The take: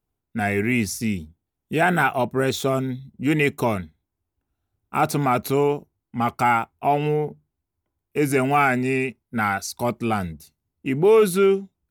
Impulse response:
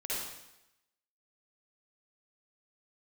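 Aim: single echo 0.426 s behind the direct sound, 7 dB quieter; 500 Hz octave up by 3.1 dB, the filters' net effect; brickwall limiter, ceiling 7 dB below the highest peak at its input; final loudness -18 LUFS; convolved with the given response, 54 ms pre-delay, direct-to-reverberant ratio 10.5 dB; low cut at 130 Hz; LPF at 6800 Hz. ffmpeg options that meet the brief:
-filter_complex "[0:a]highpass=130,lowpass=6.8k,equalizer=f=500:t=o:g=4,alimiter=limit=-10.5dB:level=0:latency=1,aecho=1:1:426:0.447,asplit=2[a][b];[1:a]atrim=start_sample=2205,adelay=54[c];[b][c]afir=irnorm=-1:irlink=0,volume=-14.5dB[d];[a][d]amix=inputs=2:normalize=0,volume=4dB"

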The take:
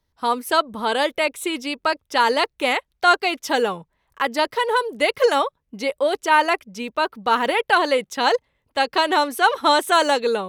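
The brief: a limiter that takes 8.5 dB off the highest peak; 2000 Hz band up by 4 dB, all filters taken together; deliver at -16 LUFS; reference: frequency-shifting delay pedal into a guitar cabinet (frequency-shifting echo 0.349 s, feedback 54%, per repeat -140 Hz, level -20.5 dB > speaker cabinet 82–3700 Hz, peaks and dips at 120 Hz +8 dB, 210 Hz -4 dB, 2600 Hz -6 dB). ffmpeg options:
-filter_complex "[0:a]equalizer=f=2k:t=o:g=6.5,alimiter=limit=-9dB:level=0:latency=1,asplit=5[a][b][c][d][e];[b]adelay=349,afreqshift=-140,volume=-20.5dB[f];[c]adelay=698,afreqshift=-280,volume=-25.9dB[g];[d]adelay=1047,afreqshift=-420,volume=-31.2dB[h];[e]adelay=1396,afreqshift=-560,volume=-36.6dB[i];[a][f][g][h][i]amix=inputs=5:normalize=0,highpass=82,equalizer=f=120:t=q:w=4:g=8,equalizer=f=210:t=q:w=4:g=-4,equalizer=f=2.6k:t=q:w=4:g=-6,lowpass=f=3.7k:w=0.5412,lowpass=f=3.7k:w=1.3066,volume=6dB"

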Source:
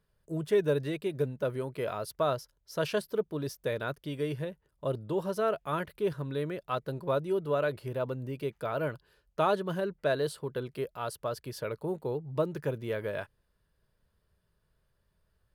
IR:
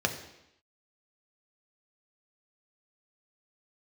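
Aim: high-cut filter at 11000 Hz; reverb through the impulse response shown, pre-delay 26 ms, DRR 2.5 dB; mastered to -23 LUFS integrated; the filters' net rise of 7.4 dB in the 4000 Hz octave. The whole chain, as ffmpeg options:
-filter_complex "[0:a]lowpass=11k,equalizer=f=4k:t=o:g=9,asplit=2[a][b];[1:a]atrim=start_sample=2205,adelay=26[c];[b][c]afir=irnorm=-1:irlink=0,volume=-12dB[d];[a][d]amix=inputs=2:normalize=0,volume=7.5dB"

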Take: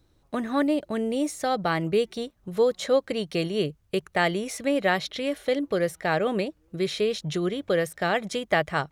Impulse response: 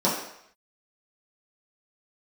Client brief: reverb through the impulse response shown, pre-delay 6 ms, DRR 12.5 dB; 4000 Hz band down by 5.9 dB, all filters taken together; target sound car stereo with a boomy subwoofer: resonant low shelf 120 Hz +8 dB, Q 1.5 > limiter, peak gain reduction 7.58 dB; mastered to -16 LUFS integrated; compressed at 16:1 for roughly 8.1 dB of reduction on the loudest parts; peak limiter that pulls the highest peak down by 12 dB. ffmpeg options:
-filter_complex "[0:a]equalizer=f=4k:t=o:g=-8,acompressor=threshold=-25dB:ratio=16,alimiter=level_in=2.5dB:limit=-24dB:level=0:latency=1,volume=-2.5dB,asplit=2[a][b];[1:a]atrim=start_sample=2205,adelay=6[c];[b][c]afir=irnorm=-1:irlink=0,volume=-27.5dB[d];[a][d]amix=inputs=2:normalize=0,lowshelf=f=120:t=q:w=1.5:g=8,volume=24dB,alimiter=limit=-7.5dB:level=0:latency=1"

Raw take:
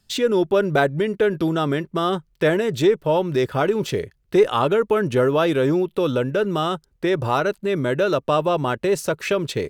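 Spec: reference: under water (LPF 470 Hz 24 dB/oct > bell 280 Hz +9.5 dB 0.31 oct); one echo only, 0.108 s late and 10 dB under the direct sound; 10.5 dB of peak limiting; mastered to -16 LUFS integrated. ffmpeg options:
-af "alimiter=limit=-15dB:level=0:latency=1,lowpass=f=470:w=0.5412,lowpass=f=470:w=1.3066,equalizer=f=280:t=o:w=0.31:g=9.5,aecho=1:1:108:0.316,volume=8dB"

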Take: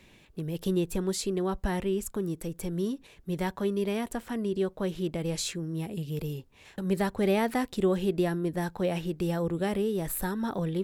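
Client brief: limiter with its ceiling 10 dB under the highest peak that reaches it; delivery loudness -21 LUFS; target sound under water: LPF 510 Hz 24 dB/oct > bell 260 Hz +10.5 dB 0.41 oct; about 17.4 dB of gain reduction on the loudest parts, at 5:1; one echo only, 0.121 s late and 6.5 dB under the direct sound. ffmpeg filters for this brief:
-af "acompressor=threshold=-42dB:ratio=5,alimiter=level_in=16dB:limit=-24dB:level=0:latency=1,volume=-16dB,lowpass=f=510:w=0.5412,lowpass=f=510:w=1.3066,equalizer=f=260:t=o:w=0.41:g=10.5,aecho=1:1:121:0.473,volume=25.5dB"

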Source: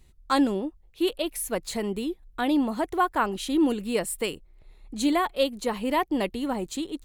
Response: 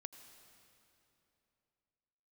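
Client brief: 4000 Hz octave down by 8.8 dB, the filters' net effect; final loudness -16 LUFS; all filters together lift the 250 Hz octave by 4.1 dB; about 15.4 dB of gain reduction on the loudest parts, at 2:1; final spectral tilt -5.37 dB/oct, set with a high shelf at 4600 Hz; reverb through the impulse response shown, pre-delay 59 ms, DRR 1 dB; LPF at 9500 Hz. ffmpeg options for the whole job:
-filter_complex "[0:a]lowpass=9.5k,equalizer=f=250:t=o:g=5,equalizer=f=4k:t=o:g=-8,highshelf=f=4.6k:g=-8.5,acompressor=threshold=-44dB:ratio=2,asplit=2[a][b];[1:a]atrim=start_sample=2205,adelay=59[c];[b][c]afir=irnorm=-1:irlink=0,volume=4dB[d];[a][d]amix=inputs=2:normalize=0,volume=19.5dB"

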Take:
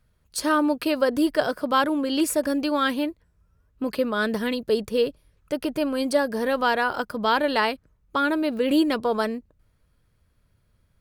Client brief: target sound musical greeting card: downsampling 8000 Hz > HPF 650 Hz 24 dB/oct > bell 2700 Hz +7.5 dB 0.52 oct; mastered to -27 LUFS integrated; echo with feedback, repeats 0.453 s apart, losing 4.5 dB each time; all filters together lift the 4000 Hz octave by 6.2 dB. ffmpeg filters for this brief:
-af "equalizer=f=4k:t=o:g=3.5,aecho=1:1:453|906|1359|1812|2265|2718|3171|3624|4077:0.596|0.357|0.214|0.129|0.0772|0.0463|0.0278|0.0167|0.01,aresample=8000,aresample=44100,highpass=f=650:w=0.5412,highpass=f=650:w=1.3066,equalizer=f=2.7k:t=o:w=0.52:g=7.5,volume=-2dB"

